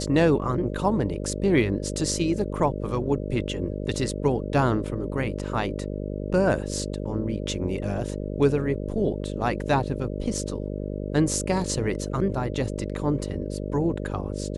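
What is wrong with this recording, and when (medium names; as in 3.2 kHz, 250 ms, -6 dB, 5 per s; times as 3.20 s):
buzz 50 Hz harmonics 12 -31 dBFS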